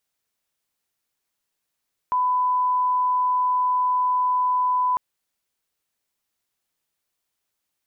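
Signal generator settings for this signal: line-up tone -18 dBFS 2.85 s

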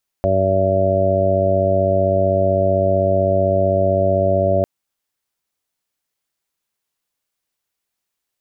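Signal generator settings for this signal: steady additive tone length 4.40 s, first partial 95.7 Hz, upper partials -4.5/-8.5/-4.5/-10/4/1 dB, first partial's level -20.5 dB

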